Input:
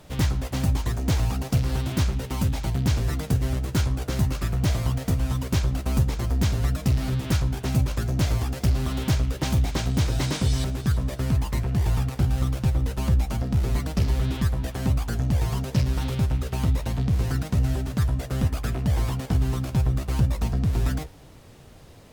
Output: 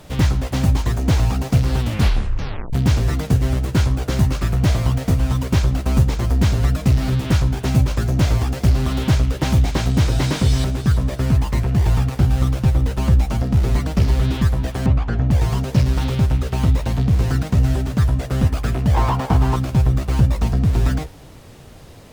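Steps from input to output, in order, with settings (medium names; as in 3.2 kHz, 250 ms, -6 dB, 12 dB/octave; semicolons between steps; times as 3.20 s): 1.78 s: tape stop 0.95 s; 14.86–15.31 s: low-pass 2.5 kHz 12 dB/octave; 18.94–19.56 s: peaking EQ 930 Hz +12.5 dB 1.1 oct; slew-rate limiter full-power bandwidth 87 Hz; trim +6.5 dB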